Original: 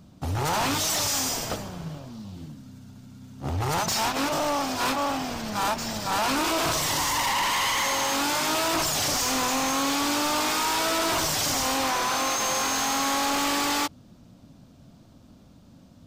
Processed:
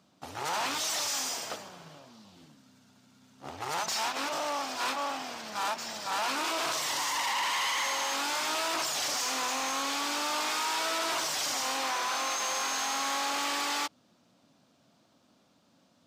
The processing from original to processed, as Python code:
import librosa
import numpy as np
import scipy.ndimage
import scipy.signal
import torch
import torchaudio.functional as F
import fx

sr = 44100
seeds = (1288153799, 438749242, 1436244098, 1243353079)

y = fx.weighting(x, sr, curve='A')
y = y * librosa.db_to_amplitude(-5.5)